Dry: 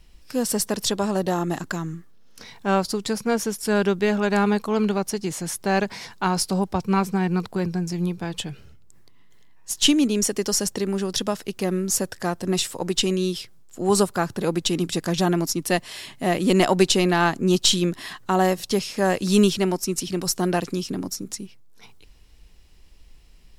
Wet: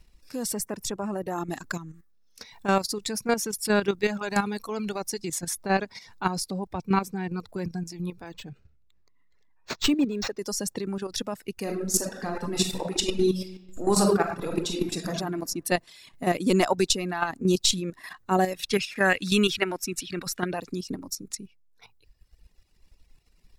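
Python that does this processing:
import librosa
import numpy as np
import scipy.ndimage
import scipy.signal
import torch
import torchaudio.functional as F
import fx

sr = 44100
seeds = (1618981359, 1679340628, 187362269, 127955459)

y = fx.peak_eq(x, sr, hz=4000.0, db=-11.0, octaves=0.79, at=(0.58, 1.38))
y = fx.high_shelf(y, sr, hz=2300.0, db=5.5, at=(1.93, 5.53), fade=0.02)
y = fx.resample_linear(y, sr, factor=4, at=(8.26, 10.39))
y = fx.reverb_throw(y, sr, start_s=11.55, length_s=3.55, rt60_s=1.4, drr_db=-2.0)
y = fx.band_shelf(y, sr, hz=2200.0, db=10.5, octaves=1.7, at=(18.54, 20.51))
y = fx.dereverb_blind(y, sr, rt60_s=1.5)
y = fx.notch(y, sr, hz=3100.0, q=8.7)
y = fx.level_steps(y, sr, step_db=10)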